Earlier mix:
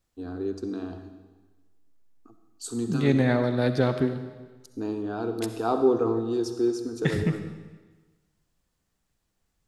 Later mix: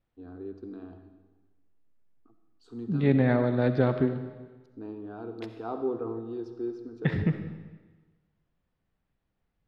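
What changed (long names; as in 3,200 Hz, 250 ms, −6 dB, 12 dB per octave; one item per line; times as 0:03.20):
first voice −8.5 dB
master: add high-frequency loss of the air 330 metres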